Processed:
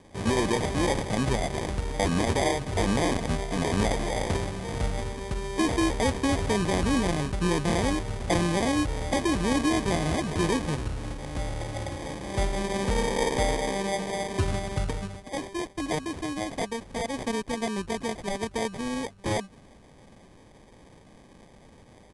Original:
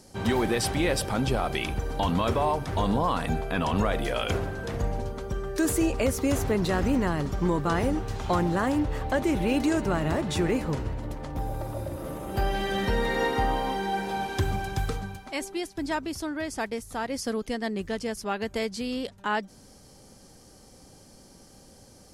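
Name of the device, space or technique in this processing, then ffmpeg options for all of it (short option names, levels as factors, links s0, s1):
crushed at another speed: -af "asetrate=88200,aresample=44100,acrusher=samples=16:mix=1:aa=0.000001,asetrate=22050,aresample=44100"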